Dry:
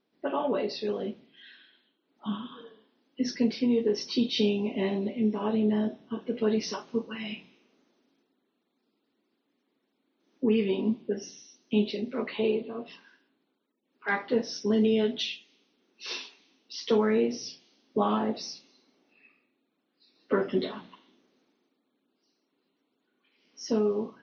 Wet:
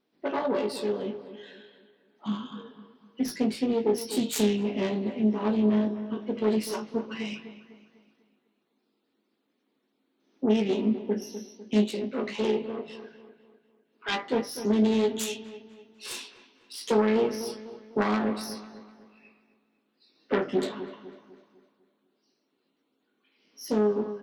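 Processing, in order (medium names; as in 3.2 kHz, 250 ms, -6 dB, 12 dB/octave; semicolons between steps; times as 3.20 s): self-modulated delay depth 0.31 ms; doubling 19 ms -8 dB; feedback echo behind a low-pass 250 ms, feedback 42%, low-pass 2.3 kHz, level -12 dB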